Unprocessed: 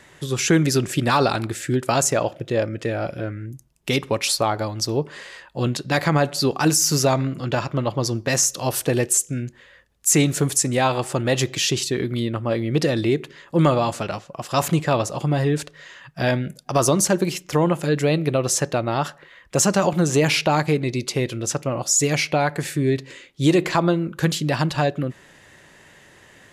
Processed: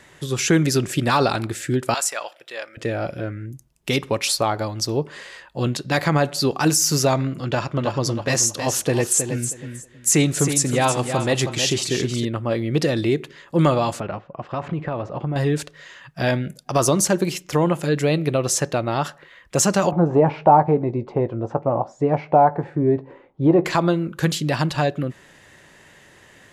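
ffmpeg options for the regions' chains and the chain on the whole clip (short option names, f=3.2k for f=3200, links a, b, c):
-filter_complex "[0:a]asettb=1/sr,asplit=3[a][b][c];[a]atrim=end=1.944[d];[b]atrim=start=1.94:end=2.77,asetpts=PTS-STARTPTS,afade=t=in:d=0.004:c=qsin,afade=t=out:st=0.826:d=0.004:c=qsin,highpass=1.1k,bandreject=f=6.5k:w=7[e];[c]atrim=start=2.766[f];[d][e]acrossfade=d=0.004:c1=hsin:c2=qsin[g];[g][f]acrossfade=d=0.004:c1=qsin:c2=hsin,asettb=1/sr,asplit=3[h][i][j];[h]atrim=end=7.454[k];[i]atrim=start=7.45:end=12.25,asetpts=PTS-STARTPTS,afade=t=in:d=0.004:c=qsin,afade=t=out:st=4.796:d=0.004:c=qsin,lowpass=f=12k:w=0.5412,lowpass=f=12k:w=1.3066,aecho=1:1:318|636|954:0.398|0.0836|0.0176,atrim=end_sample=211680[l];[j]atrim=start=12.246[m];[k][l]acrossfade=d=0.004:c1=hsin:c2=qsin[n];[n][m]acrossfade=d=0.004:c1=qsin:c2=hsin,asettb=1/sr,asplit=3[o][p][q];[o]atrim=end=14.004[r];[p]atrim=start=14:end=15.36,asetpts=PTS-STARTPTS,afade=t=in:d=0.004:c=qsin,afade=t=out:st=1.356:d=0.004:c=qsin,lowpass=2.5k,aemphasis=mode=reproduction:type=75kf,acompressor=threshold=-21dB:ratio=6:attack=3.2:release=140:knee=1:detection=peak[s];[q]atrim=start=15.356[t];[r][s]acrossfade=d=0.004:c1=hsin:c2=qsin[u];[u][t]acrossfade=d=0.004:c1=qsin:c2=hsin,asettb=1/sr,asplit=3[v][w][x];[v]atrim=end=19.914[y];[w]atrim=start=19.91:end=23.65,asetpts=PTS-STARTPTS,afade=t=in:d=0.004:c=qsin,afade=t=out:st=3.736:d=0.004:c=qsin,lowpass=f=850:t=q:w=3.2,asplit=2[z][aa];[aa]adelay=18,volume=-13dB[ab];[z][ab]amix=inputs=2:normalize=0,atrim=end_sample=164934[ac];[x]atrim=start=23.646[ad];[y][ac]acrossfade=d=0.004:c1=hsin:c2=qsin[ae];[ae][ad]acrossfade=d=0.004:c1=qsin:c2=hsin"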